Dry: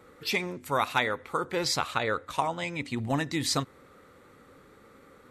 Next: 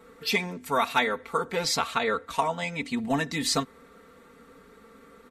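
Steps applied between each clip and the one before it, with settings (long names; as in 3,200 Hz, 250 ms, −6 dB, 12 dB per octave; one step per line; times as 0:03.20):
comb filter 4.4 ms, depth 83%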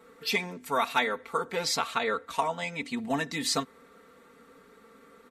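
low-shelf EQ 110 Hz −10.5 dB
level −2 dB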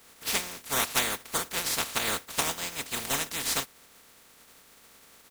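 compressing power law on the bin magnitudes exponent 0.2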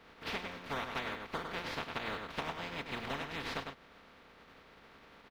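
high-frequency loss of the air 330 metres
slap from a distant wall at 17 metres, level −7 dB
downward compressor 3 to 1, threshold −41 dBFS, peak gain reduction 11.5 dB
level +3 dB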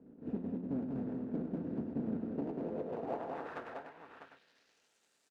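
running median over 41 samples
band-pass filter sweep 240 Hz → 7,700 Hz, 0:02.22–0:04.93
multi-tap delay 194/649 ms −4/−8 dB
level +12 dB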